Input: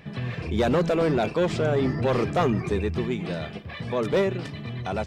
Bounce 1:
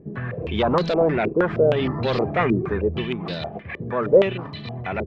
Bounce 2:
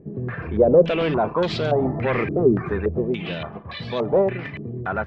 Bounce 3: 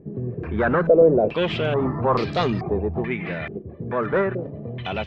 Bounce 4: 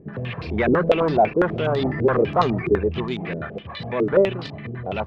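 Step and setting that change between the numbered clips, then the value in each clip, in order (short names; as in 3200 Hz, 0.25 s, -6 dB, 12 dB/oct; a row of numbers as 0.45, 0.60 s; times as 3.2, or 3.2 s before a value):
stepped low-pass, rate: 6.4, 3.5, 2.3, 12 Hz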